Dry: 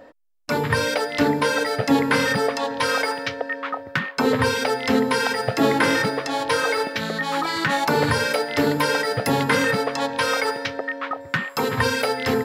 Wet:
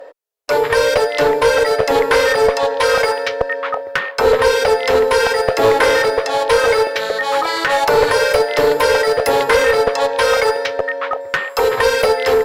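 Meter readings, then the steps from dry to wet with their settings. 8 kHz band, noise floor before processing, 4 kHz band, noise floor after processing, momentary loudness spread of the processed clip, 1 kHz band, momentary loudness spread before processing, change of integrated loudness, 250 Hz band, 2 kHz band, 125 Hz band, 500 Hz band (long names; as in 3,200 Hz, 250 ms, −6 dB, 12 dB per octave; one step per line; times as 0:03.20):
+4.5 dB, −41 dBFS, +4.5 dB, −31 dBFS, 7 LU, +6.0 dB, 7 LU, +7.0 dB, −7.0 dB, +5.0 dB, −4.5 dB, +10.5 dB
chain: low shelf with overshoot 320 Hz −13 dB, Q 3
asymmetric clip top −16 dBFS
level +5 dB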